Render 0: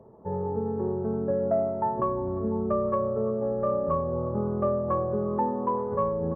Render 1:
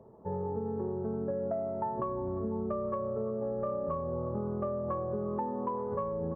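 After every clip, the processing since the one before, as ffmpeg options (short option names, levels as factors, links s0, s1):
-af "acompressor=threshold=0.0447:ratio=6,volume=0.708"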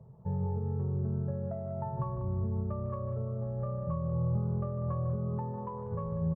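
-af "lowshelf=f=200:t=q:w=3:g=11.5,aecho=1:1:151.6|192.4:0.282|0.316,volume=0.473"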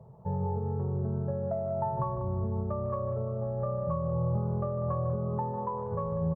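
-af "equalizer=f=760:w=0.74:g=8.5"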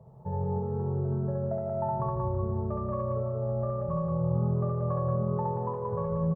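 -af "aecho=1:1:67.06|180.8:0.891|0.708,volume=0.794"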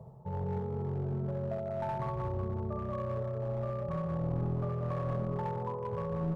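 -af "areverse,acompressor=mode=upward:threshold=0.0316:ratio=2.5,areverse,aeval=exprs='clip(val(0),-1,0.0422)':c=same,volume=0.631"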